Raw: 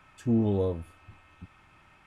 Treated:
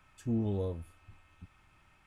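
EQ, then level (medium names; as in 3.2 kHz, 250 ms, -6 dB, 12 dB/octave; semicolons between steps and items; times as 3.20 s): bass shelf 80 Hz +10.5 dB; treble shelf 4.7 kHz +8 dB; -8.5 dB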